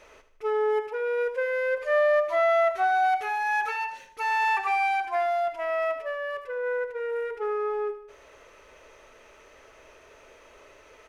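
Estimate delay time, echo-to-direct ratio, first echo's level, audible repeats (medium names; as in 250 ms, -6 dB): 77 ms, -11.0 dB, -12.0 dB, 3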